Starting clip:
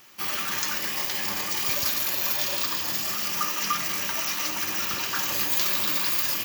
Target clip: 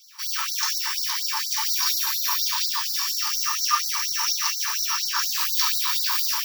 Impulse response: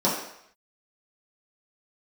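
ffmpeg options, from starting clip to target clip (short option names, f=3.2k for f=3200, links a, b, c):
-filter_complex "[1:a]atrim=start_sample=2205,atrim=end_sample=3528[a];[0:a][a]afir=irnorm=-1:irlink=0,afftfilt=real='re*gte(b*sr/1024,790*pow(3900/790,0.5+0.5*sin(2*PI*4.2*pts/sr)))':imag='im*gte(b*sr/1024,790*pow(3900/790,0.5+0.5*sin(2*PI*4.2*pts/sr)))':win_size=1024:overlap=0.75,volume=-6.5dB"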